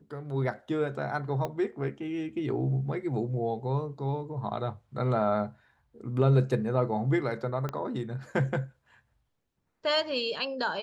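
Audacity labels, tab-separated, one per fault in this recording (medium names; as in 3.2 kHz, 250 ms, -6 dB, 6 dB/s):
1.450000	1.450000	pop -19 dBFS
7.690000	7.690000	pop -20 dBFS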